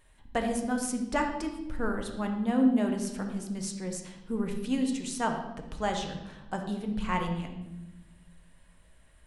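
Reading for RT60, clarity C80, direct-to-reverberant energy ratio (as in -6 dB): 0.95 s, 8.5 dB, 3.0 dB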